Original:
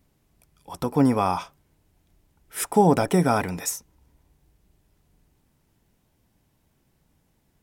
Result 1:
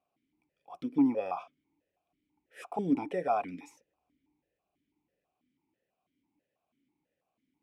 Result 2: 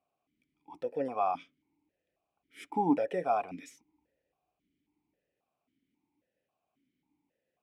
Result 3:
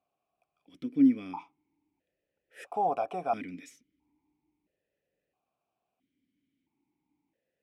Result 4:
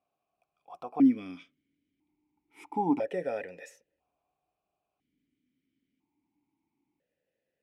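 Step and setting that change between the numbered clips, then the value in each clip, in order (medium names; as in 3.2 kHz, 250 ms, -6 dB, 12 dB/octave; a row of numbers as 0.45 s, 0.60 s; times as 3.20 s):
stepped vowel filter, rate: 6.1 Hz, 3.7 Hz, 1.5 Hz, 1 Hz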